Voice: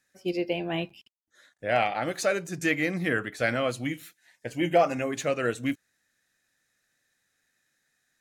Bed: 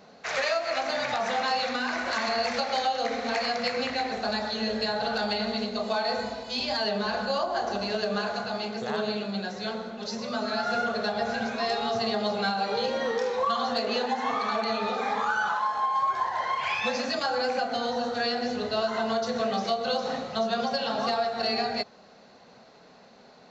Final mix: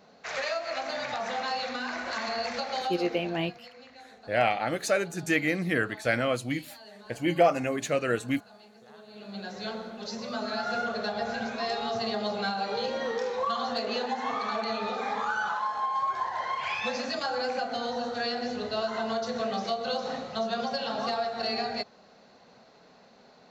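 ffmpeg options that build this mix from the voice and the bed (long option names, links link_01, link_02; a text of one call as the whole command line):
ffmpeg -i stem1.wav -i stem2.wav -filter_complex "[0:a]adelay=2650,volume=0dB[link_01];[1:a]volume=14dB,afade=type=out:start_time=2.82:duration=0.56:silence=0.141254,afade=type=in:start_time=9.1:duration=0.49:silence=0.11885[link_02];[link_01][link_02]amix=inputs=2:normalize=0" out.wav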